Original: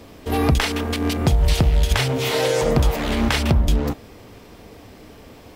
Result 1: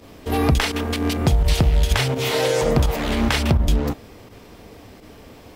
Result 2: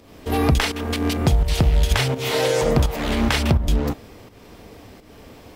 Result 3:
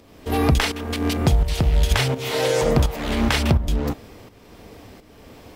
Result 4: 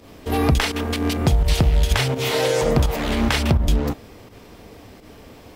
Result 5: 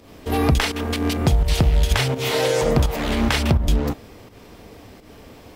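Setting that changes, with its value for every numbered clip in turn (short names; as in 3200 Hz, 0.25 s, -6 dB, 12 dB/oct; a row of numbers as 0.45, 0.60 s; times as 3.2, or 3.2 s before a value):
pump, release: 60, 262, 528, 98, 168 ms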